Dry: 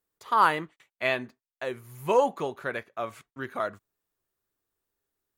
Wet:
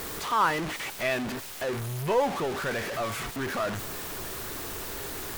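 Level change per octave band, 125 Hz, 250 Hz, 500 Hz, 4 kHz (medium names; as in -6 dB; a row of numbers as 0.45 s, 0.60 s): +8.5 dB, +4.0 dB, -0.5 dB, +5.5 dB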